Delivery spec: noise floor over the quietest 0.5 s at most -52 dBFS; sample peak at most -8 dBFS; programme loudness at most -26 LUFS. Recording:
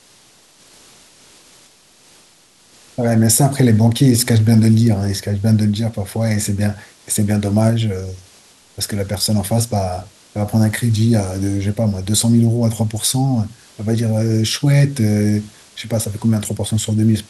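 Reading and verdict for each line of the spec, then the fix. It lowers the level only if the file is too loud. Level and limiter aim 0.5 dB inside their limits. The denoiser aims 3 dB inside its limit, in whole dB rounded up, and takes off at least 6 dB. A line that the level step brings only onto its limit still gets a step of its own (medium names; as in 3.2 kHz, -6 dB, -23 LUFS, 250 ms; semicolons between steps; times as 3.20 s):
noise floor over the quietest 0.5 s -50 dBFS: fail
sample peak -3.0 dBFS: fail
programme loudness -16.5 LUFS: fail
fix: trim -10 dB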